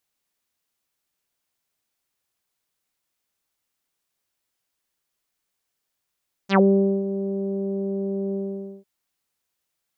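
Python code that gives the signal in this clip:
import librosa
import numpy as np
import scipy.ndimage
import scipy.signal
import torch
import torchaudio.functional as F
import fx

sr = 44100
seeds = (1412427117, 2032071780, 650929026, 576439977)

y = fx.sub_voice(sr, note=55, wave='saw', cutoff_hz=480.0, q=3.9, env_oct=4.0, env_s=0.11, attack_ms=63.0, decay_s=0.48, sustain_db=-12, release_s=0.5, note_s=1.85, slope=24)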